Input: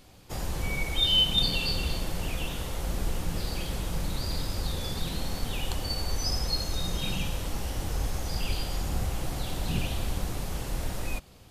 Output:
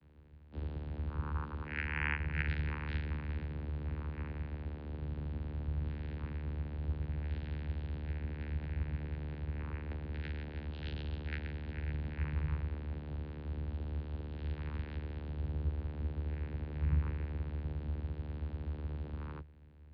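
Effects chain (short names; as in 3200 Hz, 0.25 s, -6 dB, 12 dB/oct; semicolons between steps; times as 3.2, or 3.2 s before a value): vocoder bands 8, saw 129 Hz; speed mistake 78 rpm record played at 45 rpm; tone controls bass +1 dB, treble -10 dB; gain -4 dB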